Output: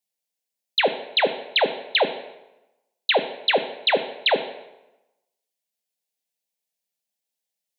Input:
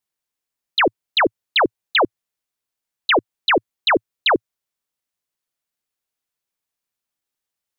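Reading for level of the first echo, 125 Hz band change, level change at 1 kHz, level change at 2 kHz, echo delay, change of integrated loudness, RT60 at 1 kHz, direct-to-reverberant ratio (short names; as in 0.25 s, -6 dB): none, -6.5 dB, -5.5 dB, -5.0 dB, none, -3.0 dB, 0.95 s, 8.0 dB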